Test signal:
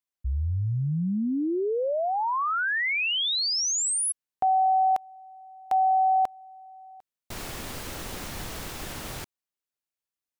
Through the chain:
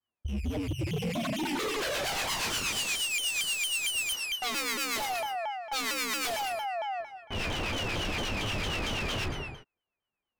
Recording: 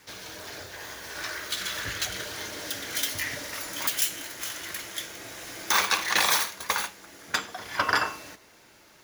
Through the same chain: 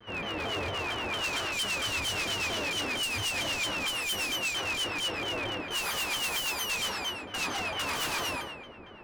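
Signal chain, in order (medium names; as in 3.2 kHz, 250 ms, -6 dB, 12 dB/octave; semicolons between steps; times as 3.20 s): sorted samples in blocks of 16 samples; in parallel at +2 dB: peak limiter -20.5 dBFS; on the sum: level-controlled noise filter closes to 1.7 kHz, open at -15.5 dBFS; reverse; compression 6:1, threshold -29 dBFS; reverse; peaking EQ 6.9 kHz -5.5 dB 0.43 oct; gated-style reverb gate 410 ms falling, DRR -5.5 dB; wavefolder -24.5 dBFS; harmonic tremolo 8.4 Hz, depth 50%, crossover 990 Hz; vibrato with a chosen wave saw down 4.4 Hz, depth 250 cents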